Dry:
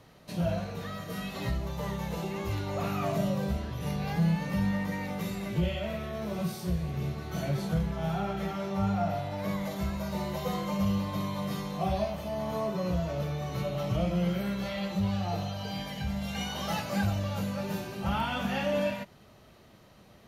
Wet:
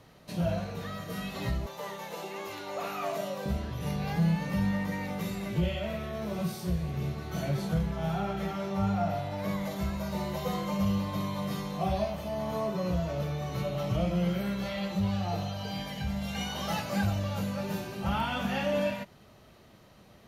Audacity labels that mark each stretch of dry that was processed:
1.660000	3.460000	high-pass filter 400 Hz

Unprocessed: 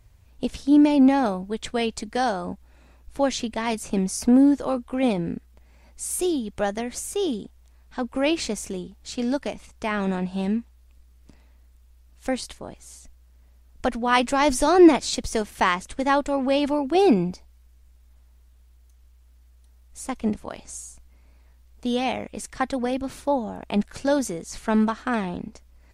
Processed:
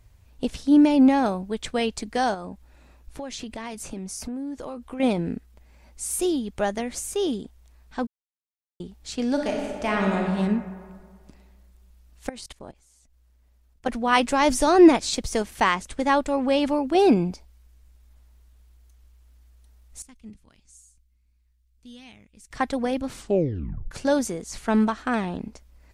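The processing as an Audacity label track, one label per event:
2.340000	5.000000	downward compressor, threshold −31 dBFS
8.070000	8.800000	silence
9.310000	10.260000	thrown reverb, RT60 1.9 s, DRR −0.5 dB
12.290000	13.890000	output level in coarse steps of 20 dB
20.020000	22.510000	guitar amp tone stack bass-middle-treble 6-0-2
23.090000	23.090000	tape stop 0.82 s

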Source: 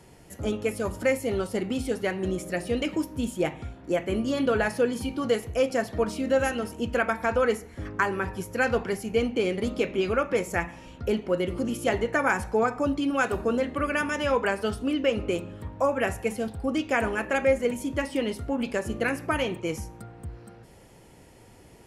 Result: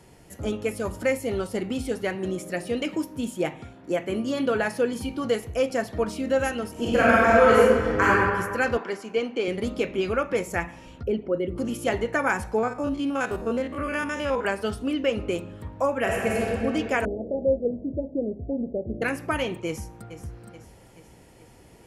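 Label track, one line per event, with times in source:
2.150000	4.930000	high-pass filter 120 Hz
6.710000	8.090000	thrown reverb, RT60 1.8 s, DRR −8 dB
8.770000	9.480000	band-pass filter 290–6,700 Hz
11.030000	11.580000	spectral envelope exaggerated exponent 1.5
12.580000	14.450000	spectrum averaged block by block every 50 ms
16.010000	16.480000	thrown reverb, RT60 2.9 s, DRR −3 dB
17.050000	19.020000	Butterworth low-pass 710 Hz 72 dB per octave
19.670000	20.080000	delay throw 430 ms, feedback 55%, level −11.5 dB

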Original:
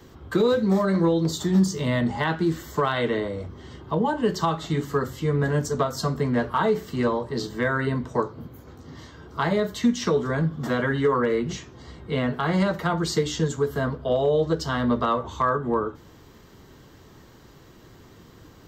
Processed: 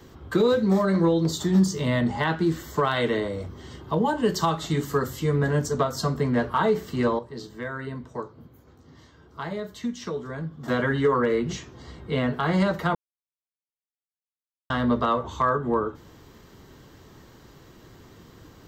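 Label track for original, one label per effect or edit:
2.910000	5.390000	high-shelf EQ 6,100 Hz +8.5 dB
7.190000	10.680000	clip gain −9 dB
12.950000	14.700000	silence

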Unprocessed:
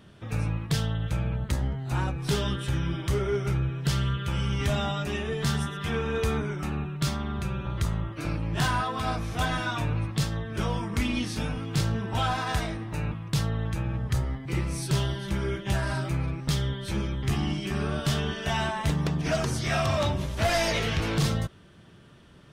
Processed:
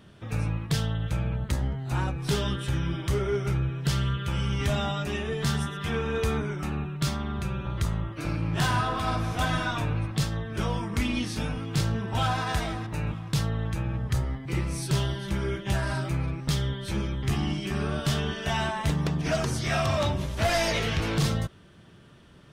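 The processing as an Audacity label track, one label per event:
8.220000	9.510000	thrown reverb, RT60 2.2 s, DRR 5.5 dB
11.610000	12.400000	delay throw 460 ms, feedback 25%, level −12 dB

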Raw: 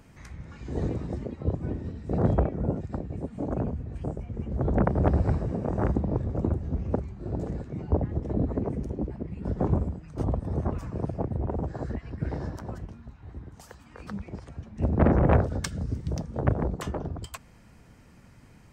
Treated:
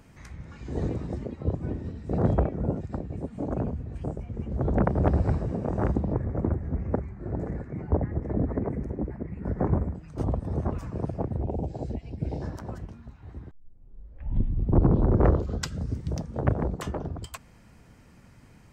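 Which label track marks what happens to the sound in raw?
6.130000	9.950000	high shelf with overshoot 2,500 Hz −7.5 dB, Q 3
11.430000	12.420000	flat-topped bell 1,400 Hz −16 dB 1.1 octaves
13.510000	13.510000	tape start 2.34 s

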